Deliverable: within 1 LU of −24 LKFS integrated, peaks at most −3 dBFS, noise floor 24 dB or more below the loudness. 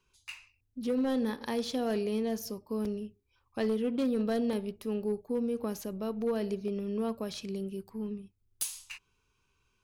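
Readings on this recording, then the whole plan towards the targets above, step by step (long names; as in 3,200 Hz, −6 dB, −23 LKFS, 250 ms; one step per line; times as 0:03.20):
share of clipped samples 0.7%; peaks flattened at −24.0 dBFS; number of dropouts 3; longest dropout 2.0 ms; integrated loudness −33.5 LKFS; sample peak −24.0 dBFS; target loudness −24.0 LKFS
→ clipped peaks rebuilt −24 dBFS
repair the gap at 0:02.85/0:04.53/0:06.68, 2 ms
level +9.5 dB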